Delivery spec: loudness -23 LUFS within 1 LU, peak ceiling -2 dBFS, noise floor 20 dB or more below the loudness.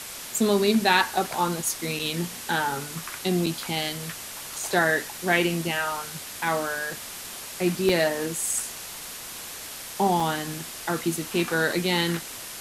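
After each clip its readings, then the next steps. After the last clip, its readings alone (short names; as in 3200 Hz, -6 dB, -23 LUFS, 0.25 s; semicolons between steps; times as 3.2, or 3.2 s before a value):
dropouts 4; longest dropout 4.4 ms; noise floor -38 dBFS; noise floor target -46 dBFS; loudness -26.0 LUFS; peak -7.0 dBFS; loudness target -23.0 LUFS
-> interpolate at 1.99/3.46/7.89/10.2, 4.4 ms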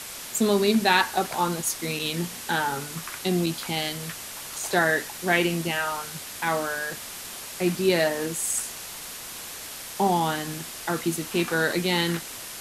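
dropouts 0; noise floor -38 dBFS; noise floor target -46 dBFS
-> denoiser 8 dB, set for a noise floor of -38 dBFS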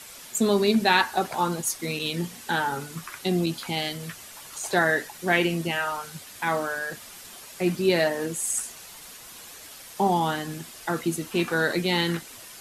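noise floor -45 dBFS; noise floor target -46 dBFS
-> denoiser 6 dB, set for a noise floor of -45 dBFS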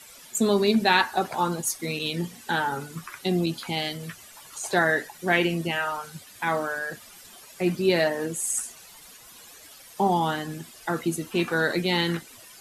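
noise floor -48 dBFS; loudness -26.0 LUFS; peak -7.0 dBFS; loudness target -23.0 LUFS
-> gain +3 dB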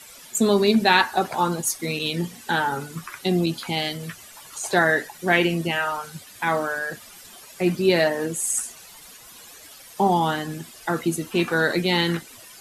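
loudness -23.0 LUFS; peak -4.0 dBFS; noise floor -45 dBFS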